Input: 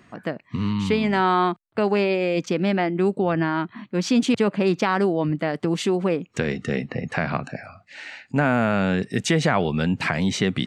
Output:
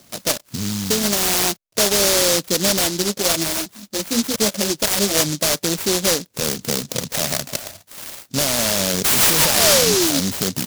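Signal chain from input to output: 3.02–5.15 chorus voices 4, 1.3 Hz, delay 12 ms, depth 3 ms; 9.04–10.2 painted sound fall 260–1800 Hz -18 dBFS; rippled Chebyshev low-pass 4500 Hz, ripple 6 dB; small resonant body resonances 590/2100 Hz, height 13 dB, ringing for 20 ms; maximiser +12.5 dB; noise-modulated delay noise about 5100 Hz, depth 0.33 ms; gain -8 dB

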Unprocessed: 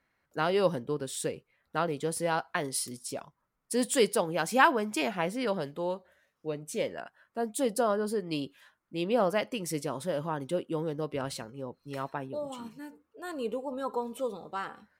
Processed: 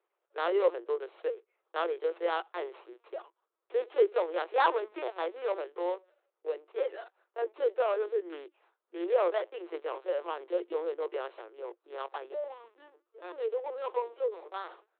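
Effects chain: median filter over 25 samples; LPC vocoder at 8 kHz pitch kept; rippled Chebyshev high-pass 340 Hz, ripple 3 dB; gain +2.5 dB

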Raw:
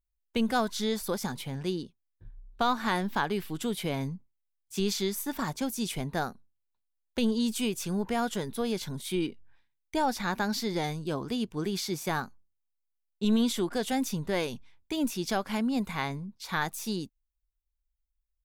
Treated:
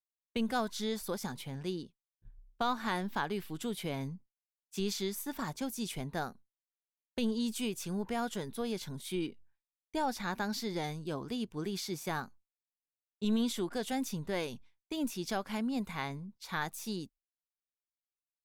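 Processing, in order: expander -43 dBFS; gain -5.5 dB

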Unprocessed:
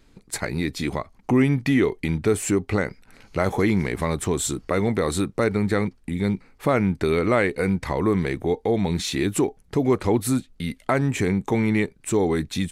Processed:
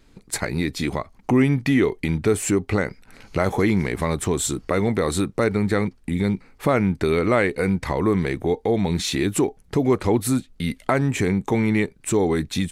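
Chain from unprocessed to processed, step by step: recorder AGC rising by 7.8 dB/s; gain +1 dB

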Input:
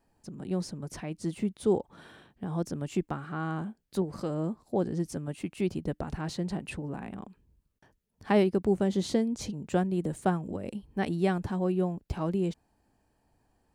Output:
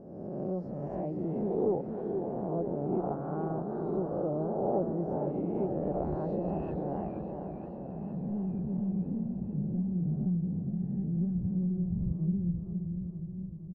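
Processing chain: spectral swells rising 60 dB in 1.35 s; 2.46–2.95 LPF 1600 Hz 12 dB/oct; in parallel at -0.5 dB: compressor, threshold -33 dBFS, peak gain reduction 15 dB; on the sum: soft clip -14.5 dBFS, distortion -19 dB; low-pass sweep 670 Hz -> 160 Hz, 7.07–7.89; feedback echo 0.609 s, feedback 53%, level -13.5 dB; warbling echo 0.471 s, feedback 63%, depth 141 cents, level -6.5 dB; gain -8.5 dB

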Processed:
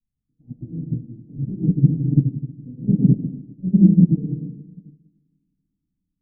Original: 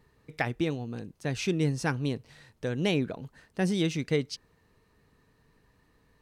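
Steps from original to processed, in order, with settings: inverse Chebyshev low-pass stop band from 1400 Hz, stop band 80 dB; reverb RT60 2.3 s, pre-delay 3 ms, DRR -20.5 dB; upward expander 2.5:1, over -29 dBFS; gain -1 dB

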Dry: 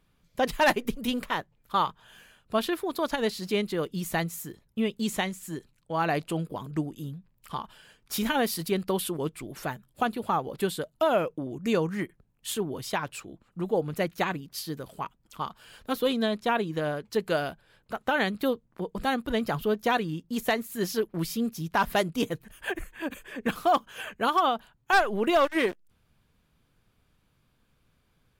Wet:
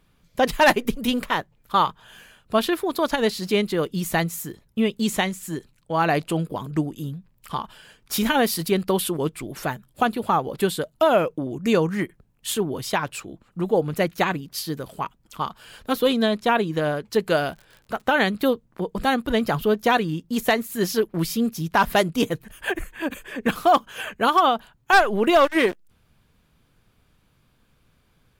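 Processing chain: 17.36–18.02 crackle 56/s -43 dBFS; gain +6 dB

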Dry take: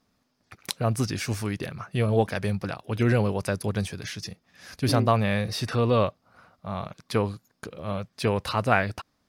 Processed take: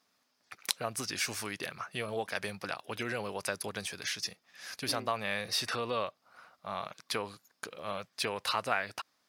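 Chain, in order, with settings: compressor 3:1, threshold -26 dBFS, peak gain reduction 8.5 dB; HPF 1100 Hz 6 dB/oct; gain +2 dB

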